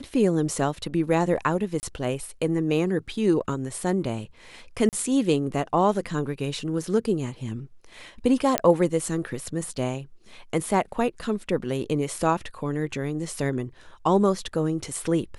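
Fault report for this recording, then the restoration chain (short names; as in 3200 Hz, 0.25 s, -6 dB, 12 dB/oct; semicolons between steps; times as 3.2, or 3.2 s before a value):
1.8–1.83 gap 29 ms
4.89–4.93 gap 38 ms
8.58 pop -4 dBFS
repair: de-click; interpolate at 1.8, 29 ms; interpolate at 4.89, 38 ms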